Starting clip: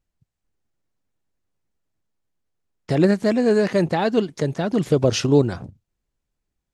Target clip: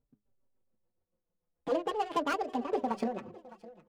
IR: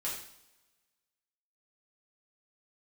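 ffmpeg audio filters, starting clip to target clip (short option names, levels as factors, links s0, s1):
-filter_complex "[0:a]asplit=2[s0][s1];[s1]acrusher=bits=3:mode=log:mix=0:aa=0.000001,volume=0.562[s2];[s0][s2]amix=inputs=2:normalize=0,equalizer=f=290:w=6.3:g=9.5,acompressor=threshold=0.0794:ratio=6,tremolo=f=4:d=0.67,bandreject=f=60:t=h:w=6,bandreject=f=120:t=h:w=6,bandreject=f=180:t=h:w=6,bandreject=f=240:t=h:w=6,bandreject=f=300:t=h:w=6,bandreject=f=360:t=h:w=6,bandreject=f=420:t=h:w=6,asetrate=76440,aresample=44100,adynamicsmooth=sensitivity=4.5:basefreq=1300,asplit=2[s3][s4];[s4]aecho=0:1:610|1220:0.106|0.0254[s5];[s3][s5]amix=inputs=2:normalize=0,asplit=2[s6][s7];[s7]adelay=4.6,afreqshift=-0.41[s8];[s6][s8]amix=inputs=2:normalize=1"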